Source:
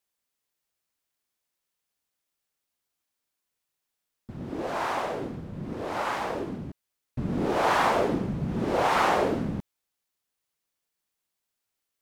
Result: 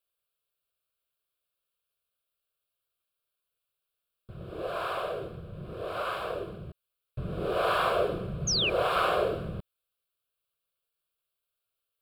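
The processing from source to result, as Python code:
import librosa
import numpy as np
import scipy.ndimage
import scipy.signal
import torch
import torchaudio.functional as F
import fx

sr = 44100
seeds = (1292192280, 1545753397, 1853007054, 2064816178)

y = fx.fixed_phaser(x, sr, hz=1300.0, stages=8)
y = fx.spec_paint(y, sr, seeds[0], shape='fall', start_s=8.47, length_s=0.23, low_hz=2300.0, high_hz=6700.0, level_db=-27.0)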